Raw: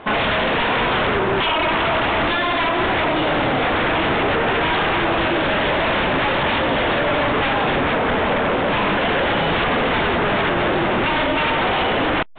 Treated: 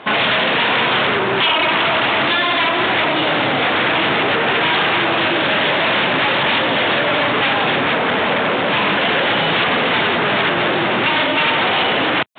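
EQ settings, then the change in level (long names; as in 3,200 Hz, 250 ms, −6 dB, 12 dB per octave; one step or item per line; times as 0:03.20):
high-pass filter 110 Hz 24 dB per octave
high-shelf EQ 2,200 Hz +10 dB
0.0 dB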